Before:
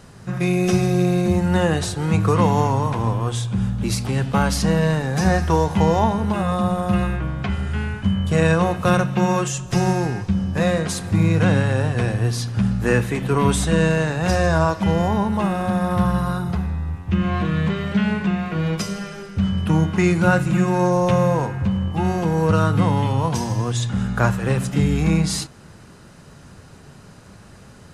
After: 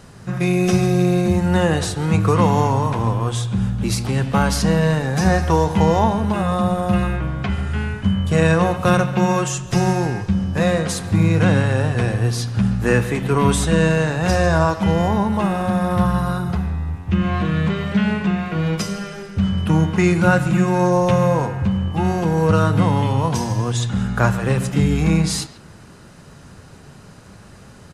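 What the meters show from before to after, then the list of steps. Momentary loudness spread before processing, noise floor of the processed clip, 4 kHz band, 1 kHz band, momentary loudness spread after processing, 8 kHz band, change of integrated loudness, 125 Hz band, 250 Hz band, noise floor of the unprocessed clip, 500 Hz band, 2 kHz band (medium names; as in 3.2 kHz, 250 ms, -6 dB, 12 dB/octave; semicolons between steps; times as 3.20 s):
6 LU, -43 dBFS, +1.5 dB, +1.5 dB, 6 LU, +1.5 dB, +1.5 dB, +1.5 dB, +1.5 dB, -44 dBFS, +1.5 dB, +1.5 dB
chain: speakerphone echo 140 ms, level -14 dB; trim +1.5 dB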